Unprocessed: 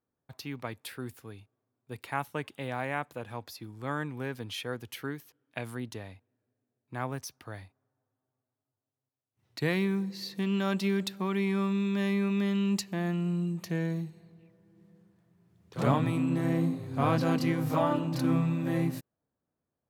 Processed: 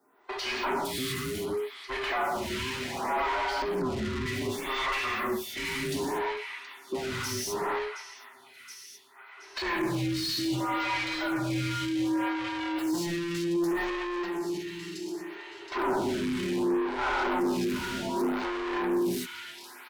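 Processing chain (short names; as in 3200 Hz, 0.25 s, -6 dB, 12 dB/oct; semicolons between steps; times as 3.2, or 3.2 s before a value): band inversion scrambler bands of 500 Hz; non-linear reverb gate 0.27 s flat, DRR -5 dB; overloaded stage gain 16.5 dB; 3.62–4.26 RIAA curve playback; 12.96–13.43 echo throw 0.38 s, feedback 45%, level -8.5 dB; thin delay 0.723 s, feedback 59%, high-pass 2100 Hz, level -22 dB; limiter -26.5 dBFS, peak gain reduction 15 dB; overdrive pedal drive 27 dB, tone 3800 Hz, clips at -26.5 dBFS; photocell phaser 0.66 Hz; gain +5 dB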